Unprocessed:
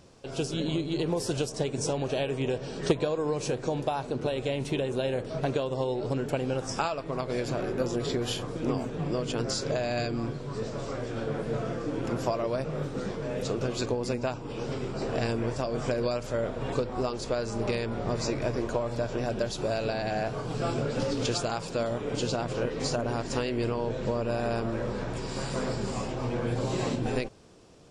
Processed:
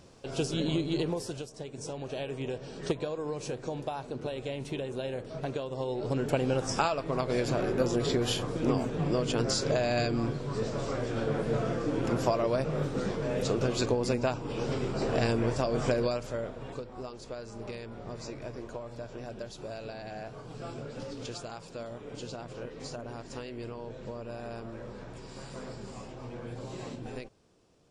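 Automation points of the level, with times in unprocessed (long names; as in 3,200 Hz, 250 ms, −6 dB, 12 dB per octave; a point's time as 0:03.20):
0:00.97 0 dB
0:01.51 −12.5 dB
0:02.30 −6 dB
0:05.69 −6 dB
0:06.32 +1.5 dB
0:15.92 +1.5 dB
0:16.79 −11 dB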